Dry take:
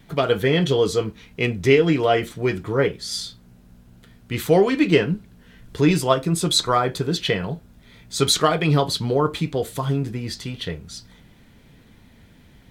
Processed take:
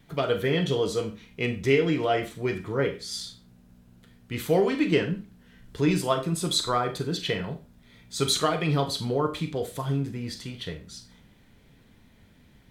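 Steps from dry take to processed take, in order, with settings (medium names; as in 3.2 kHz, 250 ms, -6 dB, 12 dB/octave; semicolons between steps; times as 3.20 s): Schroeder reverb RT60 0.31 s, combs from 29 ms, DRR 7.5 dB; trim -6.5 dB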